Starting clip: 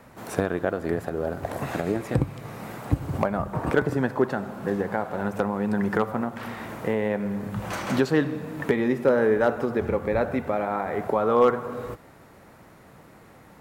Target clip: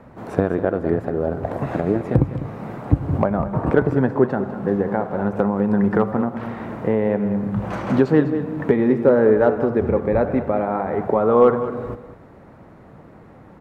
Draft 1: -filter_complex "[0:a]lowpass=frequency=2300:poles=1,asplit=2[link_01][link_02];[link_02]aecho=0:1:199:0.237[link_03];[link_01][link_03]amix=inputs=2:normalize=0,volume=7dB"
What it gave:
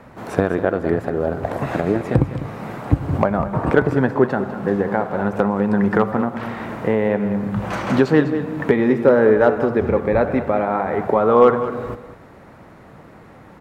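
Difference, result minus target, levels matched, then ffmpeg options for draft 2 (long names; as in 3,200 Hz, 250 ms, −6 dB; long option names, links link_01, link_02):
2,000 Hz band +4.5 dB
-filter_complex "[0:a]lowpass=frequency=770:poles=1,asplit=2[link_01][link_02];[link_02]aecho=0:1:199:0.237[link_03];[link_01][link_03]amix=inputs=2:normalize=0,volume=7dB"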